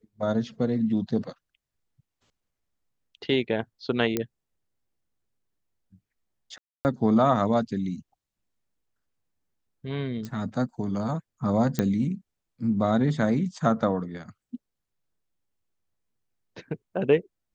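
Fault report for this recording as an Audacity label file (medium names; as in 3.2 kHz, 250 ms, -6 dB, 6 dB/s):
4.170000	4.170000	pop -11 dBFS
6.580000	6.850000	dropout 269 ms
10.250000	10.250000	pop -23 dBFS
11.790000	11.790000	pop -11 dBFS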